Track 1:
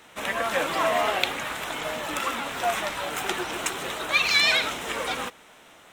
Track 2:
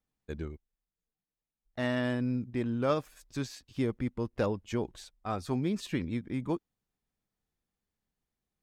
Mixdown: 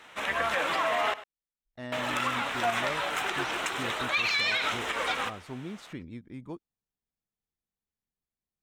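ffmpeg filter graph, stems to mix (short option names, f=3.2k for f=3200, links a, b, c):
-filter_complex "[0:a]lowpass=f=1.4k:p=1,tiltshelf=f=920:g=-7.5,volume=1.5dB,asplit=3[a][b][c];[a]atrim=end=1.14,asetpts=PTS-STARTPTS,afade=t=out:st=1.136:d=0.004:c=hsin[d];[b]atrim=start=1.14:end=1.92,asetpts=PTS-STARTPTS,volume=0[e];[c]atrim=start=1.92,asetpts=PTS-STARTPTS,afade=t=in:d=0.004:c=hsin[f];[d][e][f]concat=n=3:v=0:a=1,asplit=2[g][h];[h]volume=-18.5dB[i];[1:a]volume=-8.5dB[j];[i]aecho=0:1:99:1[k];[g][j][k]amix=inputs=3:normalize=0,alimiter=limit=-18dB:level=0:latency=1:release=80"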